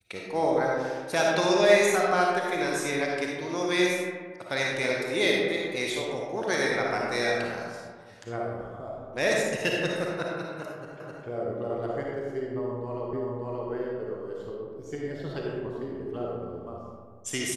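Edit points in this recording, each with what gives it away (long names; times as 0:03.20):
0:11.00: the same again, the last 0.26 s
0:13.13: the same again, the last 0.58 s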